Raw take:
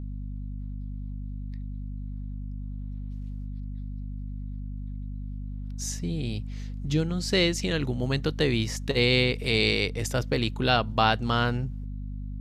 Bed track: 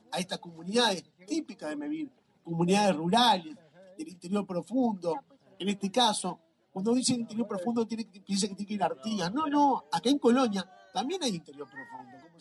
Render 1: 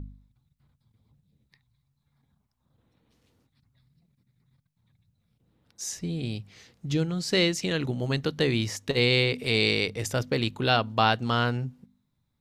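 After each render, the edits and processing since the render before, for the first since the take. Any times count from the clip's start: de-hum 50 Hz, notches 5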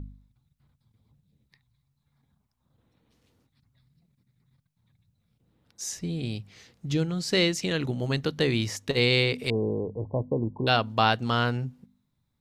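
9.5–10.67 brick-wall FIR low-pass 1100 Hz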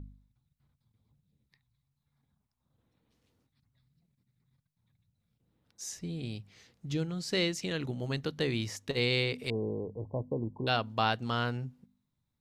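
gain -6.5 dB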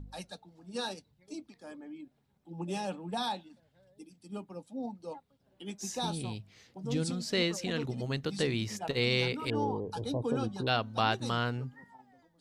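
add bed track -11 dB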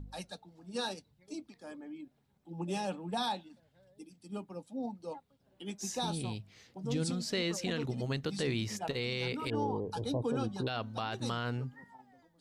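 limiter -24 dBFS, peak gain reduction 10.5 dB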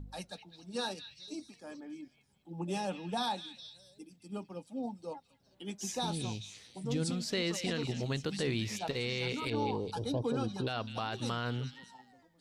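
delay with a stepping band-pass 0.206 s, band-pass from 2800 Hz, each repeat 0.7 oct, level -6.5 dB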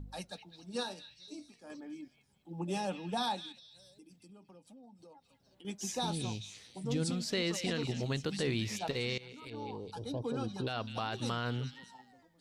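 0.83–1.7 resonator 59 Hz, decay 0.31 s; 3.52–5.65 compressor 10:1, threshold -53 dBFS; 9.18–10.94 fade in, from -18.5 dB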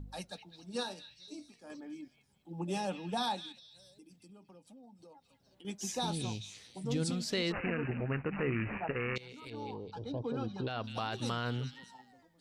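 7.52–9.16 careless resampling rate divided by 8×, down none, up filtered; 9.74–10.84 air absorption 150 m

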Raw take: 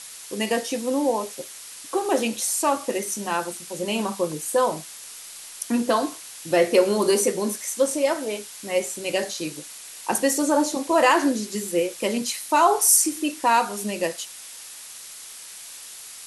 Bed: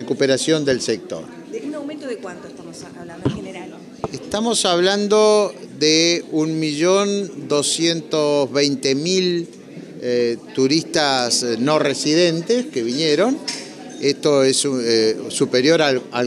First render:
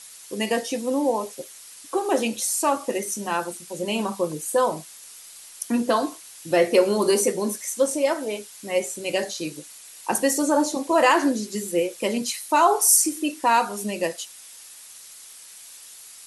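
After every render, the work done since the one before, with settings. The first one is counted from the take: denoiser 6 dB, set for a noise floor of -41 dBFS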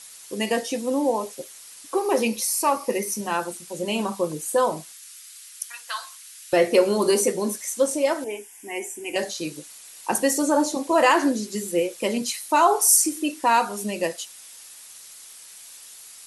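1.95–3.21 ripple EQ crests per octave 0.86, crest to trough 7 dB; 4.92–6.53 HPF 1300 Hz 24 dB/oct; 8.24–9.16 fixed phaser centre 840 Hz, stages 8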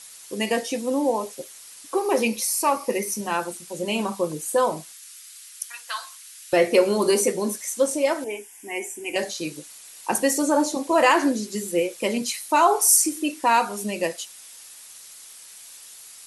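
dynamic EQ 2300 Hz, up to +4 dB, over -45 dBFS, Q 5.6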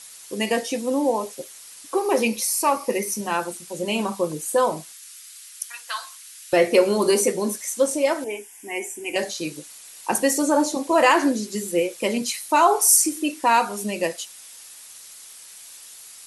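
gain +1 dB

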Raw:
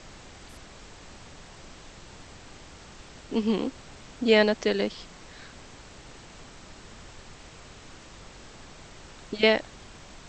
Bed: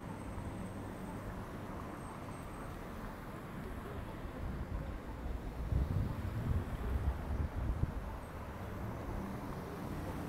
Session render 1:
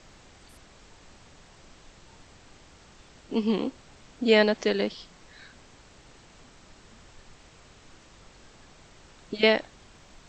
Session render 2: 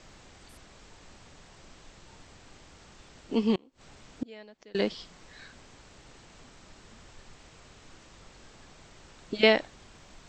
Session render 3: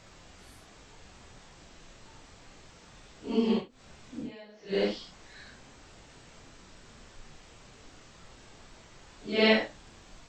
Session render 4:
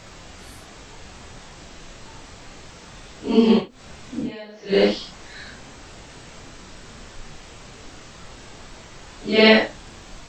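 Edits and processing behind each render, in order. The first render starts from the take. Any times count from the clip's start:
noise print and reduce 6 dB
3.55–4.75 flipped gate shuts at -21 dBFS, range -28 dB
phase scrambler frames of 0.2 s
gain +11 dB; limiter -3 dBFS, peak gain reduction 2.5 dB

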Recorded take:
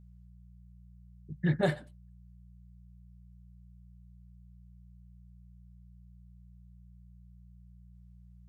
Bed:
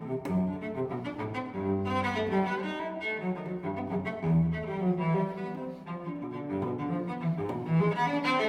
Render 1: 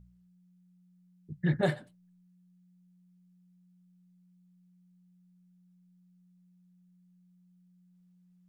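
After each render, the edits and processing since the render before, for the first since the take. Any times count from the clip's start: de-hum 60 Hz, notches 2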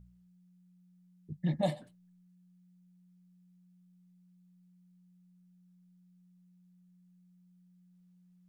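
1.37–1.82 fixed phaser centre 400 Hz, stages 6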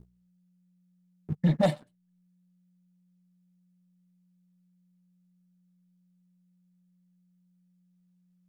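transient shaper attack +4 dB, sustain -4 dB; sample leveller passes 2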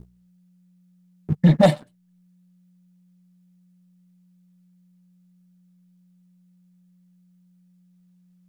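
gain +9 dB

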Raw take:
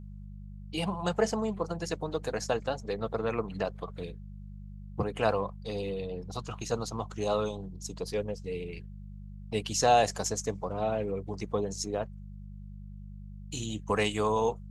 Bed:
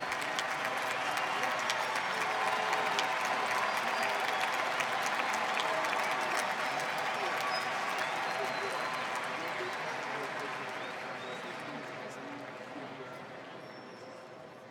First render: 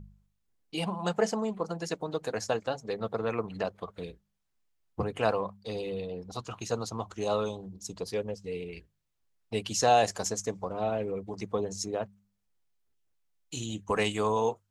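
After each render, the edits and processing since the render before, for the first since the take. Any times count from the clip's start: de-hum 50 Hz, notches 4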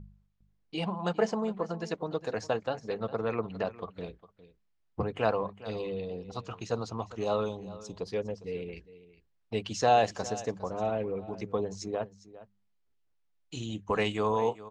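air absorption 120 m; echo 0.406 s -17 dB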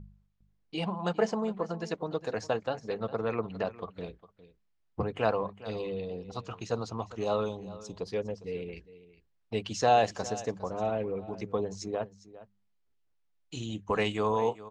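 nothing audible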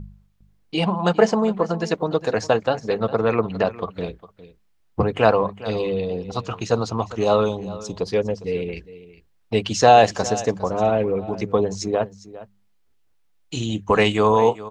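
gain +11.5 dB; limiter -2 dBFS, peak gain reduction 1.5 dB

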